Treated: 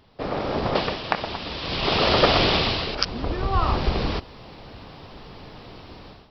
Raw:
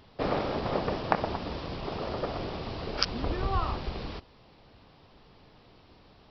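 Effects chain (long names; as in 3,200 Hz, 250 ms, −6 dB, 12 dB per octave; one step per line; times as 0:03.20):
0:00.75–0:02.95: parametric band 3,400 Hz +12.5 dB 2.2 octaves
automatic gain control gain up to 15.5 dB
level −1 dB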